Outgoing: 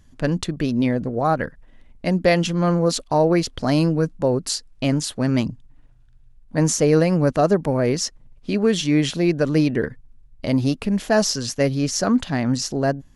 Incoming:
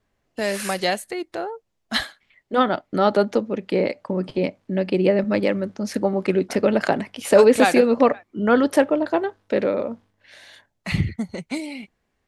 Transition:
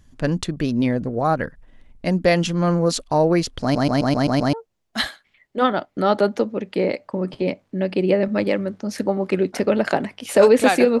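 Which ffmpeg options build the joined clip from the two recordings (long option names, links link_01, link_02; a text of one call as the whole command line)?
ffmpeg -i cue0.wav -i cue1.wav -filter_complex "[0:a]apad=whole_dur=11,atrim=end=11,asplit=7[link_01][link_02][link_03][link_04][link_05][link_06][link_07];[link_01]atrim=end=3.752[link_08];[link_02]atrim=start=3.618:end=3.752[link_09];[link_03]atrim=start=3.618:end=3.752[link_10];[link_04]atrim=start=3.618:end=3.752[link_11];[link_05]atrim=start=3.618:end=3.752[link_12];[link_06]atrim=start=3.618:end=3.752[link_13];[link_07]atrim=start=3.618:end=3.752[link_14];[1:a]atrim=start=1.488:end=7.96[link_15];[link_08][link_09]acrossfade=duration=0.004:curve1=hsin:curve2=hsin[link_16];[link_16][link_10]acrossfade=duration=0.004:curve1=hsin:curve2=hsin[link_17];[link_17][link_11]acrossfade=duration=0.004:curve1=hsin:curve2=hsin[link_18];[link_18][link_12]acrossfade=duration=0.004:curve1=hsin:curve2=hsin[link_19];[link_19][link_13]acrossfade=duration=0.004:curve1=hsin:curve2=hsin[link_20];[link_20][link_14]acrossfade=duration=0.004:curve1=hsin:curve2=hsin[link_21];[link_21][link_15]acrossfade=duration=0.004:curve1=hsin:curve2=hsin" out.wav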